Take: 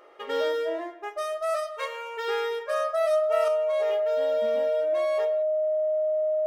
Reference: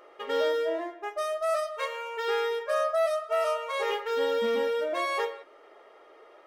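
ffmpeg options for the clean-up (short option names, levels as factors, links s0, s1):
-af "bandreject=f=620:w=30,asetnsamples=n=441:p=0,asendcmd='3.48 volume volume 7dB',volume=1"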